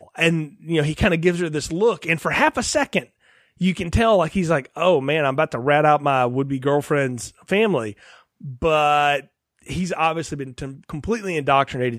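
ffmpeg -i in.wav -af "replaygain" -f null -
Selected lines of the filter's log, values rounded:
track_gain = -0.1 dB
track_peak = 0.523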